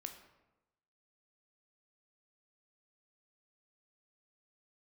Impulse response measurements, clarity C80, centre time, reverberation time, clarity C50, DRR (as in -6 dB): 10.5 dB, 18 ms, 1.0 s, 9.0 dB, 5.5 dB